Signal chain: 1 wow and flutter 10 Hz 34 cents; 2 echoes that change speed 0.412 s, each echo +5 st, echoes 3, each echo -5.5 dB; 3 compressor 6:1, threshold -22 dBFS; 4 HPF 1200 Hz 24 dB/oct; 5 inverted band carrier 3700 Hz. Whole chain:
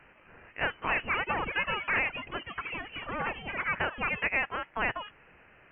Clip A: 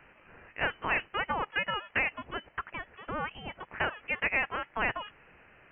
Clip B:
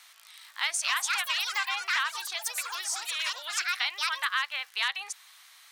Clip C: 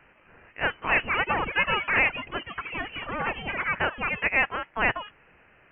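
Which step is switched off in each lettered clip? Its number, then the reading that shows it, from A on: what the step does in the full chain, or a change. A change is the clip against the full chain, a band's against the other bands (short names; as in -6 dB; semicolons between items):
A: 2, crest factor change +2.0 dB; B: 5, momentary loudness spread change -4 LU; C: 3, mean gain reduction 3.5 dB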